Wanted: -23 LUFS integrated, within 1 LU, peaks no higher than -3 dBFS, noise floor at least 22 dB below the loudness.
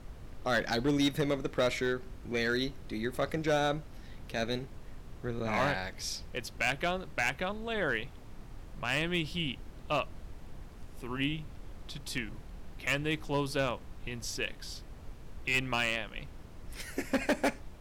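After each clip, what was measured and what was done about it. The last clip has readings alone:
clipped samples 0.6%; clipping level -22.0 dBFS; noise floor -49 dBFS; noise floor target -55 dBFS; loudness -33.0 LUFS; peak level -22.0 dBFS; loudness target -23.0 LUFS
-> clip repair -22 dBFS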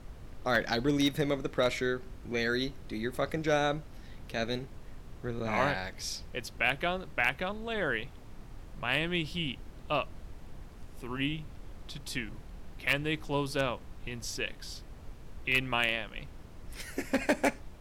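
clipped samples 0.0%; noise floor -49 dBFS; noise floor target -54 dBFS
-> noise print and reduce 6 dB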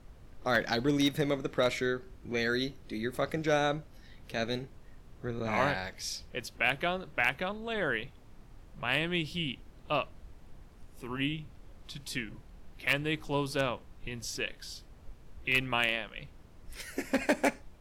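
noise floor -54 dBFS; loudness -32.0 LUFS; peak level -13.0 dBFS; loudness target -23.0 LUFS
-> trim +9 dB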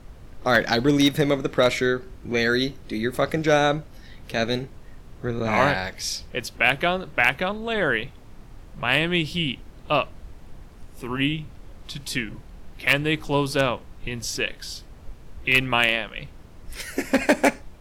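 loudness -23.0 LUFS; peak level -4.0 dBFS; noise floor -45 dBFS

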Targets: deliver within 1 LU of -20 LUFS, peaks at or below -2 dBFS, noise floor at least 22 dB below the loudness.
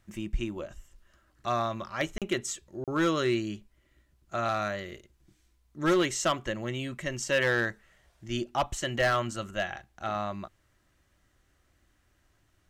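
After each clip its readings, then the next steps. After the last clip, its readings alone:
clipped samples 0.6%; clipping level -19.5 dBFS; dropouts 2; longest dropout 37 ms; loudness -30.5 LUFS; peak level -19.5 dBFS; loudness target -20.0 LUFS
-> clip repair -19.5 dBFS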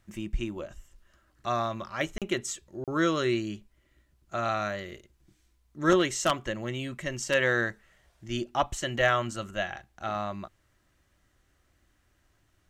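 clipped samples 0.0%; dropouts 2; longest dropout 37 ms
-> interpolate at 2.18/2.84 s, 37 ms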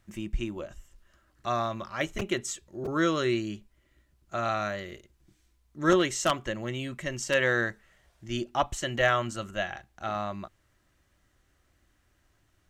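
dropouts 0; loudness -30.0 LUFS; peak level -10.5 dBFS; loudness target -20.0 LUFS
-> trim +10 dB; peak limiter -2 dBFS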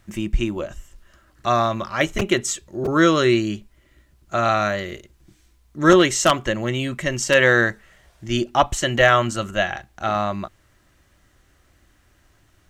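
loudness -20.0 LUFS; peak level -2.0 dBFS; noise floor -59 dBFS

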